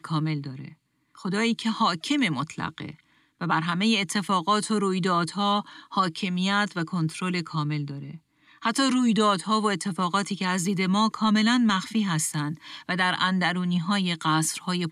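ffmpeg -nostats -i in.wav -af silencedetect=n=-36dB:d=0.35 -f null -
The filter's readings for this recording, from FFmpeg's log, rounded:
silence_start: 0.68
silence_end: 1.19 | silence_duration: 0.51
silence_start: 2.91
silence_end: 3.41 | silence_duration: 0.50
silence_start: 8.16
silence_end: 8.62 | silence_duration: 0.46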